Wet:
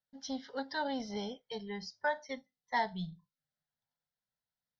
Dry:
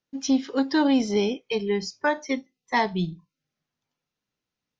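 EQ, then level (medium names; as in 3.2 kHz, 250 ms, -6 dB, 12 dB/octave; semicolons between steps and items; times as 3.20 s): peaking EQ 1.1 kHz +9.5 dB 0.46 oct; static phaser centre 1.7 kHz, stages 8; -9.0 dB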